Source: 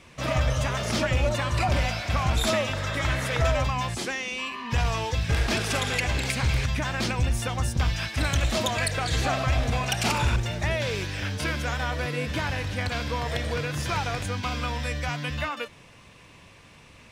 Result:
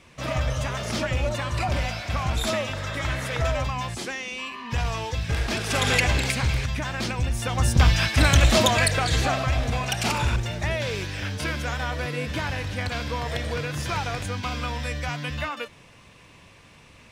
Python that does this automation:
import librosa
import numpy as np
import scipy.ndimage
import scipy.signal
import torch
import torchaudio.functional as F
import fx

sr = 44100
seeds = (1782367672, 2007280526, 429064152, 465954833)

y = fx.gain(x, sr, db=fx.line((5.63, -1.5), (5.9, 6.5), (6.63, -1.0), (7.35, -1.0), (7.75, 7.5), (8.6, 7.5), (9.52, 0.0)))